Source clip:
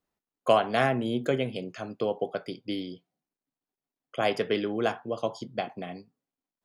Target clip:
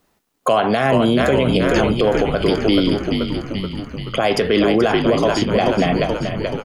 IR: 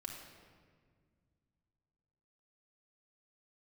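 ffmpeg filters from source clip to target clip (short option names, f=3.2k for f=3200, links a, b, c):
-filter_complex "[0:a]acompressor=threshold=-33dB:ratio=1.5,asplit=9[a][b][c][d][e][f][g][h][i];[b]adelay=430,afreqshift=-54,volume=-8dB[j];[c]adelay=860,afreqshift=-108,volume=-12.2dB[k];[d]adelay=1290,afreqshift=-162,volume=-16.3dB[l];[e]adelay=1720,afreqshift=-216,volume=-20.5dB[m];[f]adelay=2150,afreqshift=-270,volume=-24.6dB[n];[g]adelay=2580,afreqshift=-324,volume=-28.8dB[o];[h]adelay=3010,afreqshift=-378,volume=-32.9dB[p];[i]adelay=3440,afreqshift=-432,volume=-37.1dB[q];[a][j][k][l][m][n][o][p][q]amix=inputs=9:normalize=0,alimiter=level_in=26.5dB:limit=-1dB:release=50:level=0:latency=1,volume=-5.5dB"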